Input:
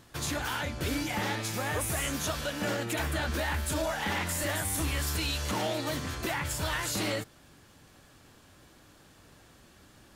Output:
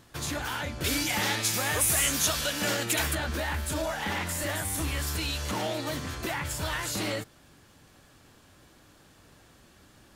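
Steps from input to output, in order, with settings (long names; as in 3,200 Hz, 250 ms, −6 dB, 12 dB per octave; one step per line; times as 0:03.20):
0:00.84–0:03.15: high-shelf EQ 2,100 Hz +10.5 dB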